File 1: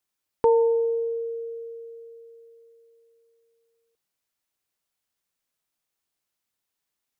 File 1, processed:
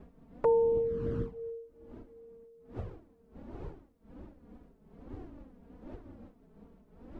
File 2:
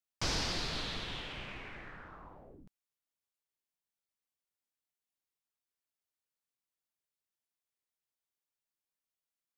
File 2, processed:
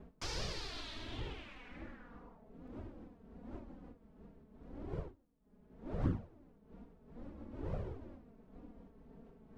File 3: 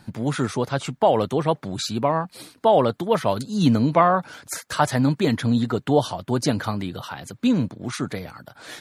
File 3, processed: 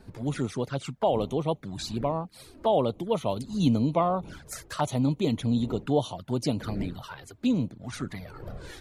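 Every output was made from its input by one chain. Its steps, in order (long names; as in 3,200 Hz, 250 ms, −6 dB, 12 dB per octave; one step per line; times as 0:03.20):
wind on the microphone 290 Hz −39 dBFS
flanger swept by the level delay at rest 5.1 ms, full sweep at −19 dBFS
level −5 dB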